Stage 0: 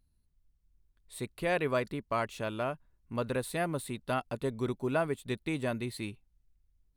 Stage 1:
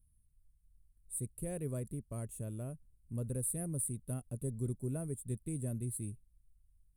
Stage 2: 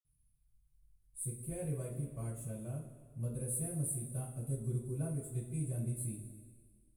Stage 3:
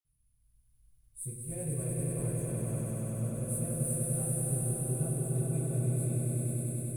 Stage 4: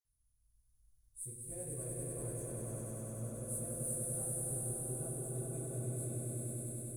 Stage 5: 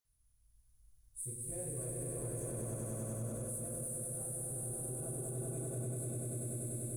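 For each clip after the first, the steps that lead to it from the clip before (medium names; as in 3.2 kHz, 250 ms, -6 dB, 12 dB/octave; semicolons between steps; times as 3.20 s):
FFT filter 120 Hz 0 dB, 310 Hz -11 dB, 520 Hz -14 dB, 890 Hz -28 dB, 5 kHz -28 dB, 9.3 kHz +9 dB, 15 kHz -3 dB; trim +2.5 dB
reverberation, pre-delay 47 ms; trim +14 dB
echo with a slow build-up 97 ms, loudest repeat 5, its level -3 dB
fifteen-band graphic EQ 160 Hz -11 dB, 2.5 kHz -8 dB, 6.3 kHz +6 dB; trim -5 dB
peak limiter -36.5 dBFS, peak gain reduction 10 dB; trim +4.5 dB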